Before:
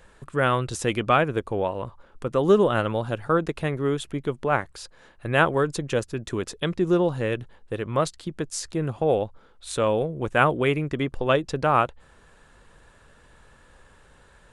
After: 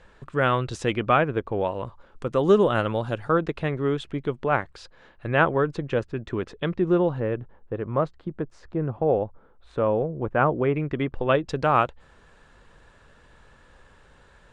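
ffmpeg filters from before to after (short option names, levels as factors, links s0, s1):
-af "asetnsamples=n=441:p=0,asendcmd='0.92 lowpass f 2900;1.61 lowpass f 7200;3.29 lowpass f 4100;5.31 lowpass f 2500;7.2 lowpass f 1300;10.76 lowpass f 2800;11.49 lowpass f 6400',lowpass=5000"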